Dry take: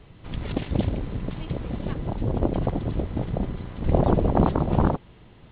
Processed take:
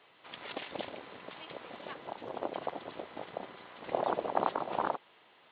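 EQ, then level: high-pass 720 Hz 12 dB/octave; -2.0 dB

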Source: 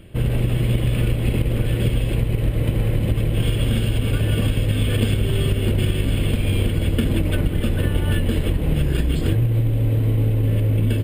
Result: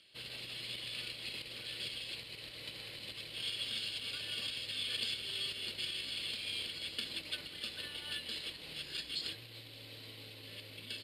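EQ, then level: band-pass filter 4.4 kHz, Q 7.1; +9.5 dB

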